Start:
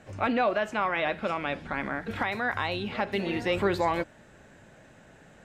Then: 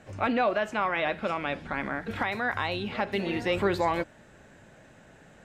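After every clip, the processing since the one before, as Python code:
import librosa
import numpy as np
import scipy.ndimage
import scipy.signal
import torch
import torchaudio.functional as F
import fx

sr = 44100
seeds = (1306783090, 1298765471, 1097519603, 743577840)

y = x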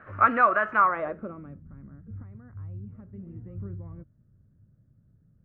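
y = fx.peak_eq(x, sr, hz=1700.0, db=11.0, octaves=1.6)
y = fx.filter_sweep_lowpass(y, sr, from_hz=1300.0, to_hz=130.0, start_s=0.75, end_s=1.64, q=1.3)
y = fx.graphic_eq_31(y, sr, hz=(100, 800, 1250), db=(5, -7, 10))
y = F.gain(torch.from_numpy(y), -4.0).numpy()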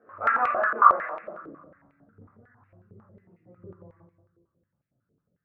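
y = fx.echo_feedback(x, sr, ms=265, feedback_pct=37, wet_db=-20)
y = fx.room_shoebox(y, sr, seeds[0], volume_m3=180.0, walls='mixed', distance_m=2.0)
y = fx.filter_held_bandpass(y, sr, hz=11.0, low_hz=430.0, high_hz=2300.0)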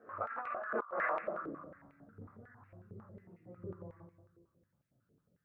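y = fx.over_compress(x, sr, threshold_db=-33.0, ratio=-1.0)
y = F.gain(torch.from_numpy(y), -7.0).numpy()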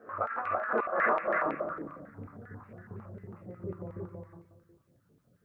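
y = x + 10.0 ** (-3.0 / 20.0) * np.pad(x, (int(326 * sr / 1000.0), 0))[:len(x)]
y = F.gain(torch.from_numpy(y), 6.5).numpy()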